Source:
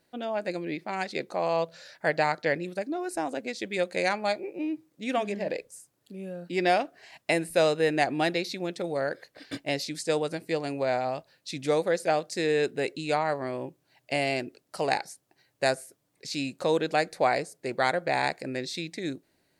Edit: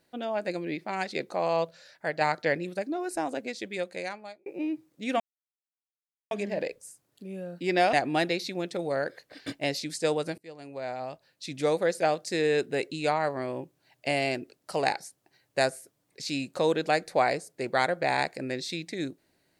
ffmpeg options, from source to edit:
-filter_complex "[0:a]asplit=7[s0][s1][s2][s3][s4][s5][s6];[s0]atrim=end=1.712[s7];[s1]atrim=start=1.708:end=2.212,asetpts=PTS-STARTPTS,volume=0.562[s8];[s2]atrim=start=2.208:end=4.46,asetpts=PTS-STARTPTS,afade=t=out:st=1.132:d=1.12[s9];[s3]atrim=start=4.46:end=5.2,asetpts=PTS-STARTPTS,afade=t=in:d=0.004:c=hsin,afade=t=out:st=0.736:d=0.004:c=hsin,apad=pad_dur=1.11[s10];[s4]atrim=start=5.2:end=6.822,asetpts=PTS-STARTPTS,afade=t=in:d=0.004:c=hsin[s11];[s5]atrim=start=7.978:end=10.43,asetpts=PTS-STARTPTS,afade=t=out:st=2.448:d=0.004:c=hsin:silence=0.0794328[s12];[s6]atrim=start=10.43,asetpts=PTS-STARTPTS,afade=t=in:d=1.42:silence=0.0794328[s13];[s7][s8]acrossfade=d=0.004:c1=hsin:c2=hsin[s14];[s9][s10][s11]concat=n=3:v=0:a=1[s15];[s14][s15]acrossfade=d=0.004:c1=hsin:c2=hsin[s16];[s12][s13]concat=n=2:v=0:a=1[s17];[s16][s17]acrossfade=d=0.004:c1=hsin:c2=hsin"

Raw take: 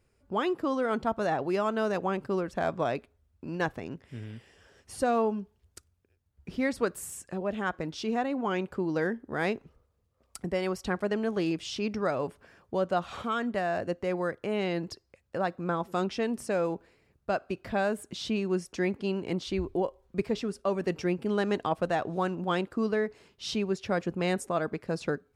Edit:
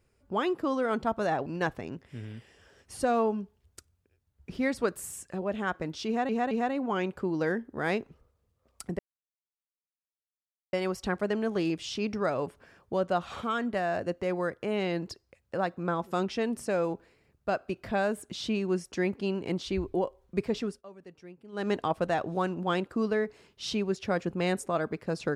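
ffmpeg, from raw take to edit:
-filter_complex "[0:a]asplit=7[s0][s1][s2][s3][s4][s5][s6];[s0]atrim=end=1.462[s7];[s1]atrim=start=3.448:end=8.282[s8];[s2]atrim=start=8.058:end=8.282[s9];[s3]atrim=start=8.058:end=10.54,asetpts=PTS-STARTPTS,afade=t=out:st=2.478:d=0.004:c=hsin,apad=pad_dur=1.74[s10];[s4]atrim=start=10.54:end=20.64,asetpts=PTS-STARTPTS,afade=t=in:d=0.004:c=hsin,afade=t=out:st=9.94:d=0.16:silence=0.105925[s11];[s5]atrim=start=20.64:end=21.33,asetpts=PTS-STARTPTS,volume=0.106[s12];[s6]atrim=start=21.33,asetpts=PTS-STARTPTS,afade=t=in:d=0.16:silence=0.105925[s13];[s7][s8]acrossfade=d=0.004:c1=hsin:c2=hsin[s14];[s14][s9]acrossfade=d=0.004:c1=hsin:c2=hsin[s15];[s10][s11][s12][s13]concat=n=4:v=0:a=1[s16];[s15][s16]acrossfade=d=0.004:c1=hsin:c2=hsin"

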